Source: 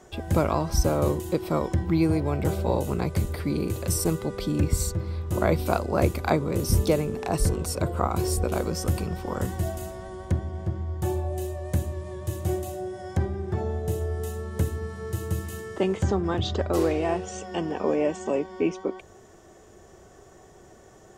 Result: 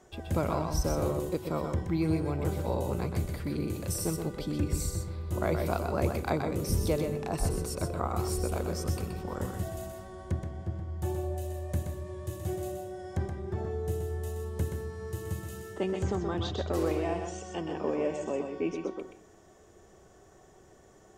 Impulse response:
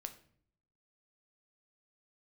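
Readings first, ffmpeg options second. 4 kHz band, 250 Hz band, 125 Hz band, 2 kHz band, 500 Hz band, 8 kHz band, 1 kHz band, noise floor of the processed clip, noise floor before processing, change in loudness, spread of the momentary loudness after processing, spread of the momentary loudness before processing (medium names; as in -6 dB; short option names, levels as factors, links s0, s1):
-6.0 dB, -5.5 dB, -5.5 dB, -6.0 dB, -5.5 dB, -6.0 dB, -6.0 dB, -57 dBFS, -52 dBFS, -5.5 dB, 8 LU, 8 LU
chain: -filter_complex "[0:a]asplit=2[s0][s1];[1:a]atrim=start_sample=2205,adelay=125[s2];[s1][s2]afir=irnorm=-1:irlink=0,volume=0.841[s3];[s0][s3]amix=inputs=2:normalize=0,volume=0.447"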